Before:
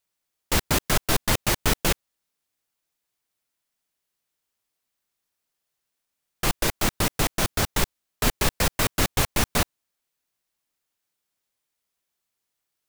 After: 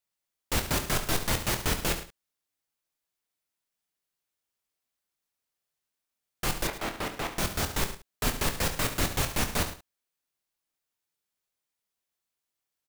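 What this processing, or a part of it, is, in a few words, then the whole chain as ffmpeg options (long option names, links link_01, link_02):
slapback doubling: -filter_complex "[0:a]asplit=3[link_01][link_02][link_03];[link_02]adelay=25,volume=-8.5dB[link_04];[link_03]adelay=71,volume=-11dB[link_05];[link_01][link_04][link_05]amix=inputs=3:normalize=0,asettb=1/sr,asplit=3[link_06][link_07][link_08];[link_06]atrim=end=6.674[link_09];[link_07]atrim=start=6.67:end=7.37,asetpts=PTS-STARTPTS,afade=type=in:duration=0.004:curve=qsin,afade=type=out:start_time=0.696:duration=0.004:curve=qsin,bass=frequency=250:gain=-9,treble=frequency=4000:gain=-11[link_10];[link_08]atrim=start=7.366[link_11];[link_09][link_10]acrossfade=duration=0.004:curve1=hsin:curve2=qsin[link_12];[link_12][link_11]acrossfade=duration=0.004:curve1=qsin:curve2=hsin,aecho=1:1:107:0.188,volume=-6dB"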